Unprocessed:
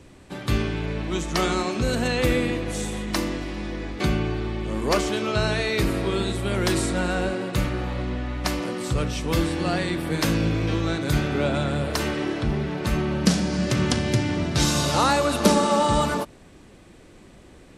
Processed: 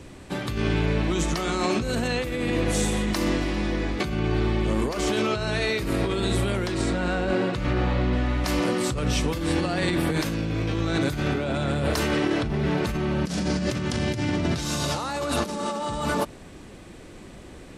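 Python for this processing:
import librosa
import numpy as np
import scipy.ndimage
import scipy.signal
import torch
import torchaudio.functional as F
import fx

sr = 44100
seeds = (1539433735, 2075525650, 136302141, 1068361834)

p1 = fx.bessel_lowpass(x, sr, hz=5100.0, order=2, at=(6.67, 8.13))
p2 = 10.0 ** (-19.0 / 20.0) * np.tanh(p1 / 10.0 ** (-19.0 / 20.0))
p3 = p1 + (p2 * 10.0 ** (-10.5 / 20.0))
y = fx.over_compress(p3, sr, threshold_db=-25.0, ratio=-1.0)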